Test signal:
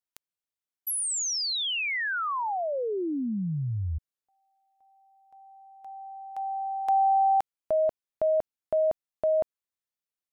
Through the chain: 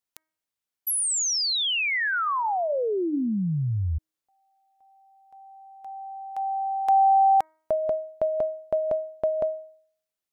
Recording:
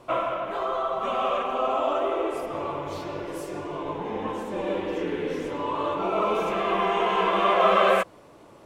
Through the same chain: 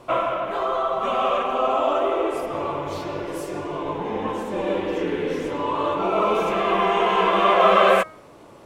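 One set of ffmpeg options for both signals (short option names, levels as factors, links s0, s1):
-af "bandreject=f=315.1:t=h:w=4,bandreject=f=630.2:t=h:w=4,bandreject=f=945.3:t=h:w=4,bandreject=f=1260.4:t=h:w=4,bandreject=f=1575.5:t=h:w=4,bandreject=f=1890.6:t=h:w=4,bandreject=f=2205.7:t=h:w=4,volume=1.58"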